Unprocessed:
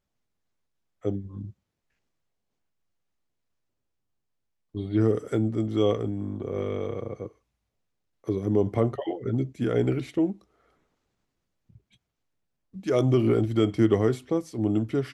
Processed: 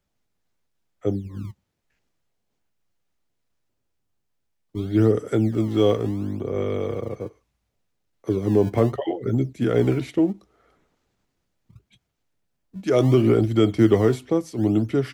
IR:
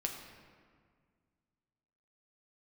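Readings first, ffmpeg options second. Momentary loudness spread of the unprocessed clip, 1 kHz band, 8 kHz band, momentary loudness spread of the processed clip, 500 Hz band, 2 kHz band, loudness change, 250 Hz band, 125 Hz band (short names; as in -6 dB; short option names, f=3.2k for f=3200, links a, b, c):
15 LU, +4.5 dB, n/a, 15 LU, +4.5 dB, +5.0 dB, +4.5 dB, +4.5 dB, +4.5 dB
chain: -filter_complex "[0:a]bandreject=f=1.1k:w=27,acrossover=split=100|660[a][b][c];[a]acrusher=samples=31:mix=1:aa=0.000001:lfo=1:lforange=49.6:lforate=0.72[d];[d][b][c]amix=inputs=3:normalize=0,volume=4.5dB"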